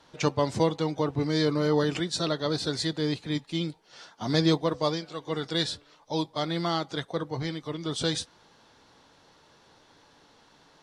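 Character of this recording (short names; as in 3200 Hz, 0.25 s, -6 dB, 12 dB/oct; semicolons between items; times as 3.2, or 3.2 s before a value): noise floor -60 dBFS; spectral tilt -4.5 dB/oct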